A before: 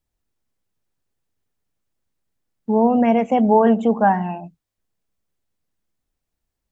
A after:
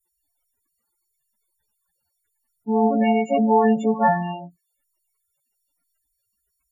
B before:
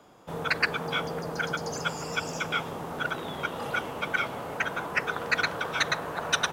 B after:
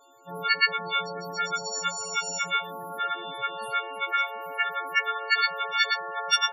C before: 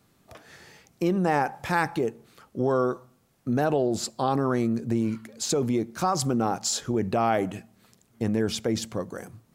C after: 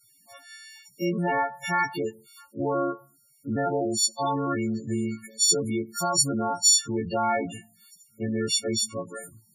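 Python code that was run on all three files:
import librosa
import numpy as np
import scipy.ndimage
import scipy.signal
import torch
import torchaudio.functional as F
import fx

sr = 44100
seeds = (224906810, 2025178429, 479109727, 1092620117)

y = fx.freq_snap(x, sr, grid_st=4)
y = fx.dmg_crackle(y, sr, seeds[0], per_s=69.0, level_db=-44.0)
y = fx.spec_topn(y, sr, count=16)
y = y * 10.0 ** (-2.5 / 20.0)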